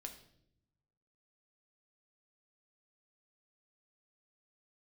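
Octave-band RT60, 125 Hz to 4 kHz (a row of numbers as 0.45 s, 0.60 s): 1.5 s, 1.2 s, 0.90 s, 0.60 s, 0.55 s, 0.60 s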